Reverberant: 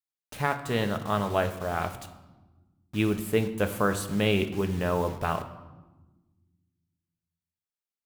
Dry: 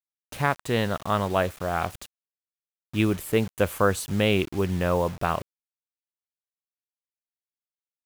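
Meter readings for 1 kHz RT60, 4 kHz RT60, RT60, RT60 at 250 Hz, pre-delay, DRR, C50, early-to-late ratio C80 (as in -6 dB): 1.1 s, 0.80 s, 1.2 s, 2.1 s, 5 ms, 7.0 dB, 11.5 dB, 13.5 dB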